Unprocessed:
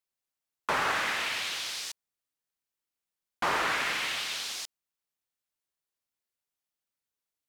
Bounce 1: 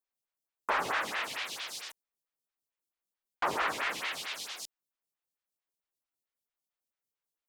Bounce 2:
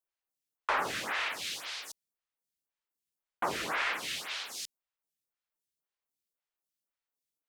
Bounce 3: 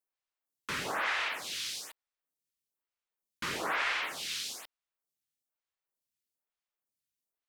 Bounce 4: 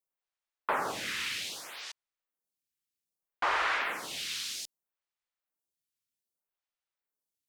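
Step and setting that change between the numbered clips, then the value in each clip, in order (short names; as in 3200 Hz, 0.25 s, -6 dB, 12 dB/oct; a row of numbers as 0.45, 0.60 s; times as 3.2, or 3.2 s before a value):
photocell phaser, rate: 4.5, 1.9, 1.1, 0.63 Hz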